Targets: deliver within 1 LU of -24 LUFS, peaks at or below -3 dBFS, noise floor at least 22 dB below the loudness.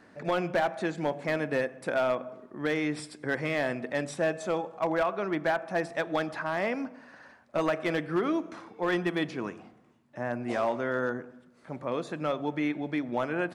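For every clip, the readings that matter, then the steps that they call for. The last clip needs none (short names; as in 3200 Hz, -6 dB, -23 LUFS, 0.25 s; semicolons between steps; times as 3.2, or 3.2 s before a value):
clipped 0.7%; flat tops at -20.0 dBFS; loudness -30.5 LUFS; peak -20.0 dBFS; loudness target -24.0 LUFS
-> clip repair -20 dBFS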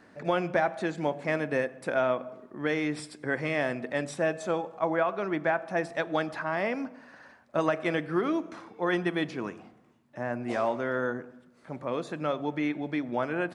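clipped 0.0%; loudness -30.5 LUFS; peak -11.5 dBFS; loudness target -24.0 LUFS
-> gain +6.5 dB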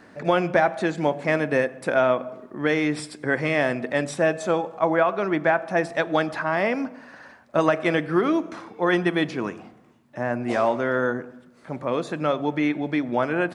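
loudness -24.0 LUFS; peak -5.0 dBFS; noise floor -53 dBFS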